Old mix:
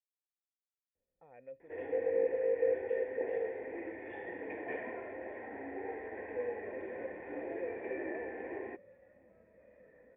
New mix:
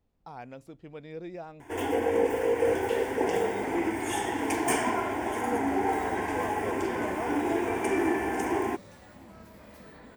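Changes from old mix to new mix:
speech: entry −0.95 s
second sound: remove high-frequency loss of the air 220 metres
master: remove formant resonators in series e

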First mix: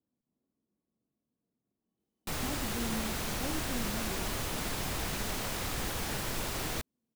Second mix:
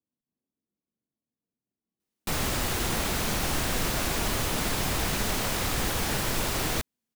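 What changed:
speech −7.0 dB
background +7.0 dB

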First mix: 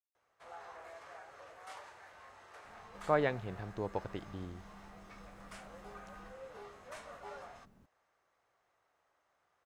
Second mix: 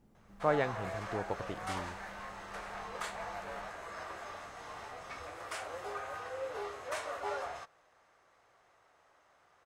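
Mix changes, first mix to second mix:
speech: entry −2.65 s
background +10.5 dB

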